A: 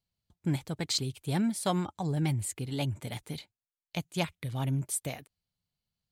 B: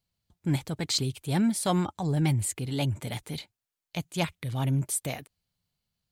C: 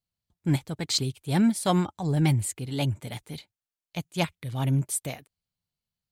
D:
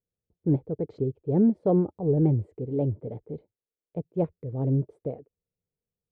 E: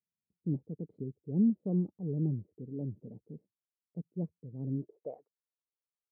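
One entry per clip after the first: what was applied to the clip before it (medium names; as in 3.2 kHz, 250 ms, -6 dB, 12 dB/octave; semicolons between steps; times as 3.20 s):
transient shaper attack -4 dB, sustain +1 dB; trim +4.5 dB
upward expansion 1.5:1, over -44 dBFS; trim +3.5 dB
resonant low-pass 460 Hz, resonance Q 4.9; trim -1.5 dB
band-pass sweep 200 Hz -> 1.1 kHz, 4.71–5.26 s; trim -4 dB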